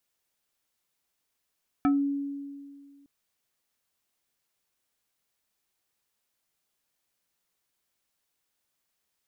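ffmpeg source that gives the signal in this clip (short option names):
-f lavfi -i "aevalsrc='0.119*pow(10,-3*t/2)*sin(2*PI*281*t+0.9*pow(10,-3*t/0.21)*sin(2*PI*3.62*281*t))':d=1.21:s=44100"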